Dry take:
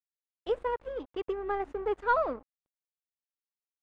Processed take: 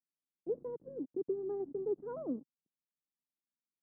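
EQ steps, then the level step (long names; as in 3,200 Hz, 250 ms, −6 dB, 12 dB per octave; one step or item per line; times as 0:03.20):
flat-topped band-pass 220 Hz, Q 1.2
high-frequency loss of the air 430 metres
+6.0 dB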